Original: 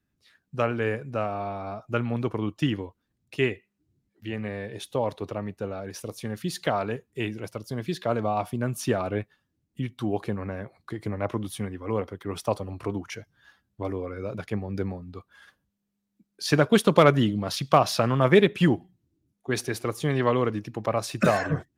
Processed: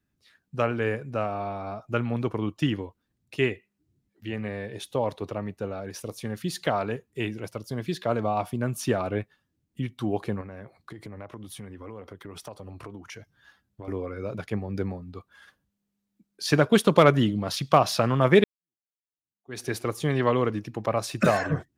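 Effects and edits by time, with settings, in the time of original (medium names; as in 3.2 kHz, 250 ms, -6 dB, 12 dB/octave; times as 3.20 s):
10.41–13.88 s: compression, threshold -37 dBFS
18.44–19.67 s: fade in exponential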